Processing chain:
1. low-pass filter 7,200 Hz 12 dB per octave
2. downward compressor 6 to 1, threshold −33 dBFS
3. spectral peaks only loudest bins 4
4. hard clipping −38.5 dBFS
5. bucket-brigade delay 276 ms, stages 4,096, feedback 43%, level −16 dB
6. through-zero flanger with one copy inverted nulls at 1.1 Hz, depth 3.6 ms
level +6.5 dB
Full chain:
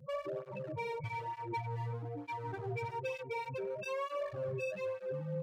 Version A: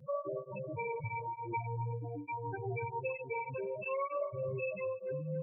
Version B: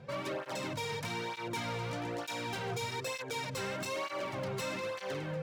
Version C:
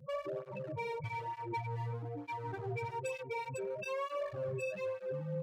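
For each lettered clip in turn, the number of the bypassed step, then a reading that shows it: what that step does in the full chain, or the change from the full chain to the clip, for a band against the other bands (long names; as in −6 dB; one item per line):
4, distortion level −16 dB
3, 8 kHz band +13.5 dB
1, 8 kHz band +4.5 dB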